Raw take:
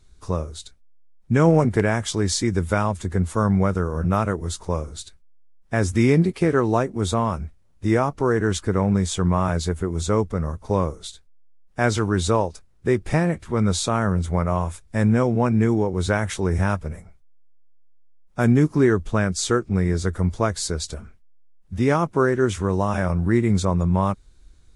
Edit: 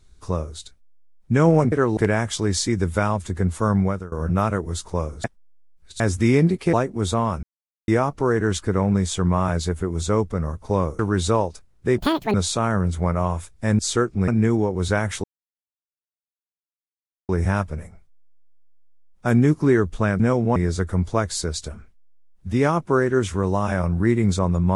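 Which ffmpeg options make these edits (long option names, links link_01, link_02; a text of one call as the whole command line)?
ffmpeg -i in.wav -filter_complex "[0:a]asplit=17[link_01][link_02][link_03][link_04][link_05][link_06][link_07][link_08][link_09][link_10][link_11][link_12][link_13][link_14][link_15][link_16][link_17];[link_01]atrim=end=1.722[link_18];[link_02]atrim=start=6.478:end=6.732[link_19];[link_03]atrim=start=1.718:end=3.87,asetpts=PTS-STARTPTS,afade=type=out:start_time=1.822:duration=0.33:silence=0.0707946[link_20];[link_04]atrim=start=3.87:end=4.992,asetpts=PTS-STARTPTS,afade=type=in:duration=0.004:curve=hsin:silence=0.0707946[link_21];[link_05]atrim=start=4.988:end=5.752,asetpts=PTS-STARTPTS,areverse[link_22];[link_06]atrim=start=5.748:end=6.482[link_23];[link_07]atrim=start=6.728:end=7.43,asetpts=PTS-STARTPTS,afade=type=out:start_time=0.698:duration=0.004:curve=hsin[link_24];[link_08]atrim=start=7.43:end=7.88,asetpts=PTS-STARTPTS,volume=0[link_25];[link_09]atrim=start=7.88:end=10.992,asetpts=PTS-STARTPTS,afade=type=in:duration=0.004:curve=hsin[link_26];[link_10]atrim=start=11.988:end=12.984[link_27];[link_11]atrim=start=12.98:end=13.65,asetpts=PTS-STARTPTS,asetrate=82467,aresample=44100[link_28];[link_12]atrim=start=13.646:end=15.102[link_29];[link_13]atrim=start=19.328:end=19.822[link_30];[link_14]atrim=start=15.458:end=16.42,asetpts=PTS-STARTPTS,afade=type=out:start_time=0.958:duration=0.004:curve=hsin,apad=pad_dur=2.05[link_31];[link_15]atrim=start=16.42:end=19.332,asetpts=PTS-STARTPTS,afade=type=in:duration=0.004:curve=hsin[link_32];[link_16]atrim=start=15.098:end=15.462[link_33];[link_17]atrim=start=19.818[link_34];[link_18][link_19]acrossfade=duration=0.004:curve1=hsin:curve2=hsin[link_35];[link_20][link_21]concat=n=2:v=0:a=1[link_36];[link_35][link_36]acrossfade=duration=0.004:curve1=hsin:curve2=hsin[link_37];[link_37][link_22]acrossfade=duration=0.004:curve1=hsin:curve2=hsin[link_38];[link_38][link_23]acrossfade=duration=0.004:curve1=hsin:curve2=hsin[link_39];[link_24][link_25][link_26]concat=n=3:v=0:a=1[link_40];[link_39][link_40]acrossfade=duration=0.004:curve1=hsin:curve2=hsin[link_41];[link_41][link_27]acrossfade=duration=0.004:curve1=hsin:curve2=hsin[link_42];[link_42][link_28]acrossfade=duration=0.004:curve1=hsin:curve2=hsin[link_43];[link_43][link_29]acrossfade=duration=0.004:curve1=hsin:curve2=hsin[link_44];[link_44][link_30]acrossfade=duration=0.004:curve1=hsin:curve2=hsin[link_45];[link_31][link_32]concat=n=2:v=0:a=1[link_46];[link_45][link_46]acrossfade=duration=0.004:curve1=hsin:curve2=hsin[link_47];[link_47][link_33]acrossfade=duration=0.004:curve1=hsin:curve2=hsin[link_48];[link_48][link_34]acrossfade=duration=0.004:curve1=hsin:curve2=hsin" out.wav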